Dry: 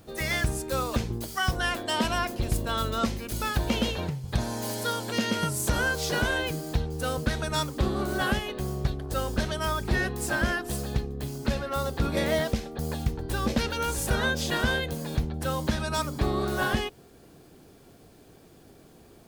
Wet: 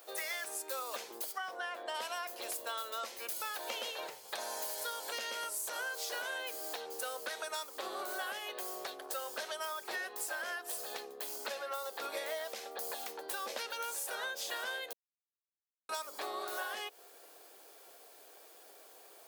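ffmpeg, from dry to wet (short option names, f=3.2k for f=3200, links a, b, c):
-filter_complex "[0:a]asplit=3[a][b][c];[a]afade=t=out:st=1.31:d=0.02[d];[b]lowpass=f=1.4k:p=1,afade=t=in:st=1.31:d=0.02,afade=t=out:st=1.94:d=0.02[e];[c]afade=t=in:st=1.94:d=0.02[f];[d][e][f]amix=inputs=3:normalize=0,asplit=3[g][h][i];[g]atrim=end=14.93,asetpts=PTS-STARTPTS,afade=t=out:st=14.926:d=0.004:c=hsin[j];[h]atrim=start=14.93:end=15.89,asetpts=PTS-STARTPTS,volume=0[k];[i]atrim=start=15.89,asetpts=PTS-STARTPTS,afade=t=in:d=0.004:c=hsin[l];[j][k][l]concat=n=3:v=0:a=1,highpass=f=510:w=0.5412,highpass=f=510:w=1.3066,highshelf=f=11k:g=10,acompressor=threshold=-37dB:ratio=6"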